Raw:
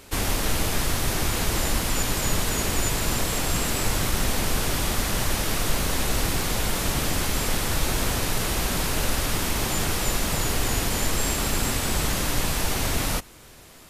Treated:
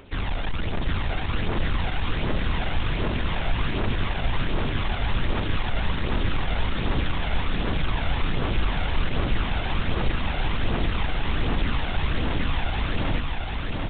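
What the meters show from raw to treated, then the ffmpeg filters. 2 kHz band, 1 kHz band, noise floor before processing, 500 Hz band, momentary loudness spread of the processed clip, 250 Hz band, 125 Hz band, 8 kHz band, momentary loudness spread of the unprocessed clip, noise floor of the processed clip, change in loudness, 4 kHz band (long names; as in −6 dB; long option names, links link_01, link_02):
−1.5 dB, −1.5 dB, −47 dBFS, −2.5 dB, 2 LU, −0.5 dB, +1.5 dB, below −40 dB, 1 LU, −28 dBFS, −3.0 dB, −5.0 dB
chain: -af "aphaser=in_gain=1:out_gain=1:delay=1.5:decay=0.51:speed=1.3:type=triangular,aresample=8000,asoftclip=type=tanh:threshold=-17dB,aresample=44100,aecho=1:1:744|1488|2232|2976|3720|4464|5208|5952|6696:0.708|0.425|0.255|0.153|0.0917|0.055|0.033|0.0198|0.0119,volume=-2.5dB"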